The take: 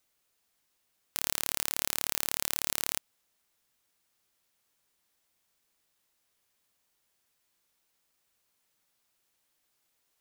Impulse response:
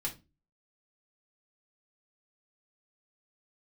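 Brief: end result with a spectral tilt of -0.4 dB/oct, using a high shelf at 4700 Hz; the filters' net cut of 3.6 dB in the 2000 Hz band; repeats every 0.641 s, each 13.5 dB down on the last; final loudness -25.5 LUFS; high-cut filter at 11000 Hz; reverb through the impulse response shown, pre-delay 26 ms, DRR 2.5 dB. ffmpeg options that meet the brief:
-filter_complex "[0:a]lowpass=11k,equalizer=f=2k:t=o:g=-6,highshelf=f=4.7k:g=6.5,aecho=1:1:641|1282:0.211|0.0444,asplit=2[a][b];[1:a]atrim=start_sample=2205,adelay=26[c];[b][c]afir=irnorm=-1:irlink=0,volume=-4.5dB[d];[a][d]amix=inputs=2:normalize=0,volume=4dB"

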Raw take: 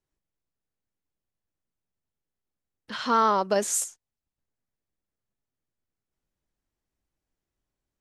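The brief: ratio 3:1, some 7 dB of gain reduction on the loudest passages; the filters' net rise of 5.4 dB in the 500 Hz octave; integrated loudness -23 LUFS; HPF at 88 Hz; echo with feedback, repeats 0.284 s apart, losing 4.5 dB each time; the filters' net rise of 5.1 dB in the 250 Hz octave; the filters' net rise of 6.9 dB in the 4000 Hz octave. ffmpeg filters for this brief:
-af "highpass=88,equalizer=f=250:t=o:g=5,equalizer=f=500:t=o:g=5.5,equalizer=f=4k:t=o:g=8.5,acompressor=threshold=-23dB:ratio=3,aecho=1:1:284|568|852|1136|1420|1704|1988|2272|2556:0.596|0.357|0.214|0.129|0.0772|0.0463|0.0278|0.0167|0.01,volume=4dB"

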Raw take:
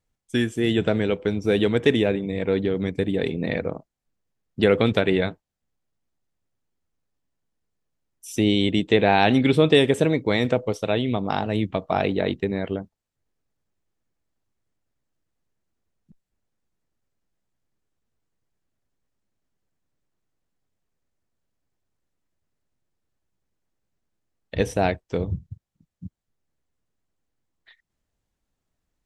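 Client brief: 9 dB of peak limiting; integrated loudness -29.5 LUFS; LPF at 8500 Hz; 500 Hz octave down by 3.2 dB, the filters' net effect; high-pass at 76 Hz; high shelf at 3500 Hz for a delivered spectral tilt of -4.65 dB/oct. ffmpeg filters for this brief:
-af "highpass=76,lowpass=8.5k,equalizer=f=500:t=o:g=-4,highshelf=f=3.5k:g=4.5,volume=-3dB,alimiter=limit=-15.5dB:level=0:latency=1"

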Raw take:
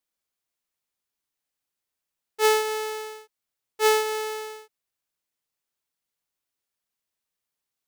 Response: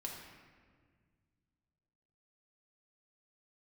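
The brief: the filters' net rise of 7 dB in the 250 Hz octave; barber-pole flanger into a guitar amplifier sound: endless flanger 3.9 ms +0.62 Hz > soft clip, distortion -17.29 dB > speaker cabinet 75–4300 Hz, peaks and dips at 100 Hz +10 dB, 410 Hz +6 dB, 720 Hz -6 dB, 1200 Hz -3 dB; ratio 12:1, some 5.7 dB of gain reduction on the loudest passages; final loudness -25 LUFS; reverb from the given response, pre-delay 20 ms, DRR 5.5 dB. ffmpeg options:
-filter_complex "[0:a]equalizer=f=250:t=o:g=8,acompressor=threshold=-19dB:ratio=12,asplit=2[a][b];[1:a]atrim=start_sample=2205,adelay=20[c];[b][c]afir=irnorm=-1:irlink=0,volume=-4.5dB[d];[a][d]amix=inputs=2:normalize=0,asplit=2[e][f];[f]adelay=3.9,afreqshift=0.62[g];[e][g]amix=inputs=2:normalize=1,asoftclip=threshold=-19dB,highpass=75,equalizer=f=100:t=q:w=4:g=10,equalizer=f=410:t=q:w=4:g=6,equalizer=f=720:t=q:w=4:g=-6,equalizer=f=1.2k:t=q:w=4:g=-3,lowpass=f=4.3k:w=0.5412,lowpass=f=4.3k:w=1.3066,volume=4dB"

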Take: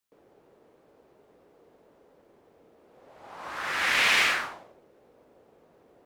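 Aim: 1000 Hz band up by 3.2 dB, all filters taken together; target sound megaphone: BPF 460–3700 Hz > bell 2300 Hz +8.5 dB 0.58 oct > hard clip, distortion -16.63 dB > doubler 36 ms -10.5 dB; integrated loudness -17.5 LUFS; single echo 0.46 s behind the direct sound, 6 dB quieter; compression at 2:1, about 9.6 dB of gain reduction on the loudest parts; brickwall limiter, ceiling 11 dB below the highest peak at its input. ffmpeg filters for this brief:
-filter_complex "[0:a]equalizer=f=1k:t=o:g=3.5,acompressor=threshold=-36dB:ratio=2,alimiter=level_in=6.5dB:limit=-24dB:level=0:latency=1,volume=-6.5dB,highpass=460,lowpass=3.7k,equalizer=f=2.3k:t=o:w=0.58:g=8.5,aecho=1:1:460:0.501,asoftclip=type=hard:threshold=-31dB,asplit=2[a][b];[b]adelay=36,volume=-10.5dB[c];[a][c]amix=inputs=2:normalize=0,volume=18.5dB"

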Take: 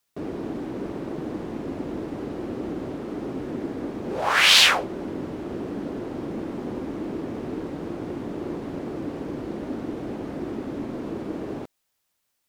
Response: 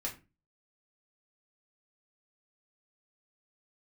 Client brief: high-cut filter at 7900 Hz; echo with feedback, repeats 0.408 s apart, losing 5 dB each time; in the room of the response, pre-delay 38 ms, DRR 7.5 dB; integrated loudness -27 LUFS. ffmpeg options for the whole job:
-filter_complex "[0:a]lowpass=7.9k,aecho=1:1:408|816|1224|1632|2040|2448|2856:0.562|0.315|0.176|0.0988|0.0553|0.031|0.0173,asplit=2[a][b];[1:a]atrim=start_sample=2205,adelay=38[c];[b][c]afir=irnorm=-1:irlink=0,volume=-8.5dB[d];[a][d]amix=inputs=2:normalize=0,volume=-3dB"

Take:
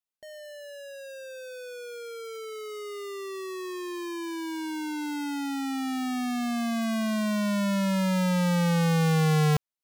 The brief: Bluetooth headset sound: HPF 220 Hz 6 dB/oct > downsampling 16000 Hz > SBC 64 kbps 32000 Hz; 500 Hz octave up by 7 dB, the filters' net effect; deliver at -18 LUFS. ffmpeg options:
-af "highpass=f=220:p=1,equalizer=f=500:t=o:g=9,aresample=16000,aresample=44100,volume=10.5dB" -ar 32000 -c:a sbc -b:a 64k

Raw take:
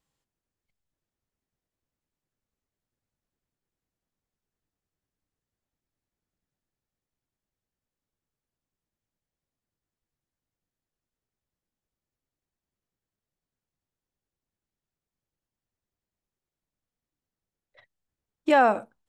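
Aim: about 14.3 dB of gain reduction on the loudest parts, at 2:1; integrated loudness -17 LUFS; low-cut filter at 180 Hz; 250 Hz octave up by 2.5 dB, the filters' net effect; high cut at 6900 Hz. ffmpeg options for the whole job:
-af "highpass=180,lowpass=6.9k,equalizer=f=250:t=o:g=4,acompressor=threshold=-41dB:ratio=2,volume=18.5dB"

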